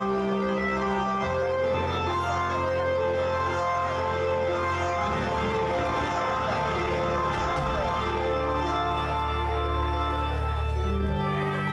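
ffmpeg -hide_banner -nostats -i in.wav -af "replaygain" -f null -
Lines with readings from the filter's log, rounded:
track_gain = +10.7 dB
track_peak = 0.119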